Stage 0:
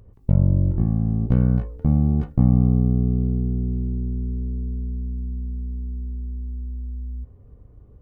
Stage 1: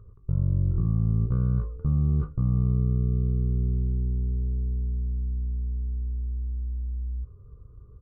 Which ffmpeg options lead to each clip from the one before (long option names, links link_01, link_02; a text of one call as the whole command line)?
ffmpeg -i in.wav -af "firequalizer=gain_entry='entry(150,0);entry(240,-12);entry(410,-1);entry(740,-19);entry(1200,7);entry(1800,-17)':delay=0.05:min_phase=1,alimiter=limit=-16.5dB:level=0:latency=1:release=51" out.wav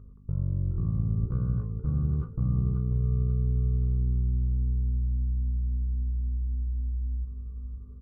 ffmpeg -i in.wav -filter_complex "[0:a]aeval=exprs='val(0)+0.00562*(sin(2*PI*50*n/s)+sin(2*PI*2*50*n/s)/2+sin(2*PI*3*50*n/s)/3+sin(2*PI*4*50*n/s)/4+sin(2*PI*5*50*n/s)/5)':channel_layout=same,asplit=2[link_01][link_02];[link_02]aecho=0:1:536|1072|1608|2144:0.501|0.175|0.0614|0.0215[link_03];[link_01][link_03]amix=inputs=2:normalize=0,volume=-4.5dB" out.wav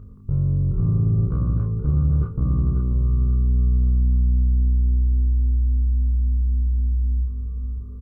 ffmpeg -i in.wav -filter_complex "[0:a]asplit=2[link_01][link_02];[link_02]adelay=29,volume=-3dB[link_03];[link_01][link_03]amix=inputs=2:normalize=0,asoftclip=type=tanh:threshold=-18.5dB,volume=7.5dB" out.wav